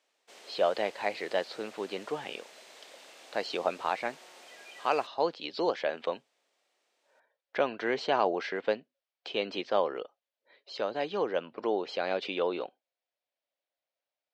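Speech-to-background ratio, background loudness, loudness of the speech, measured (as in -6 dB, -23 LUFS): 18.5 dB, -51.0 LUFS, -32.5 LUFS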